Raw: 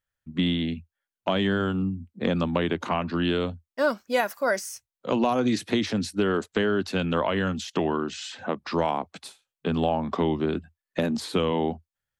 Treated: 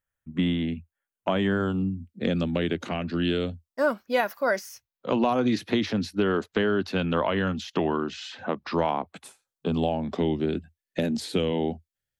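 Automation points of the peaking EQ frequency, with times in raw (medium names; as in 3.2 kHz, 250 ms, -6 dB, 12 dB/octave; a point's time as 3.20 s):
peaking EQ -13 dB 0.68 oct
1.50 s 4.4 kHz
1.90 s 1 kHz
3.51 s 1 kHz
4.05 s 8.3 kHz
8.95 s 8.3 kHz
9.93 s 1.1 kHz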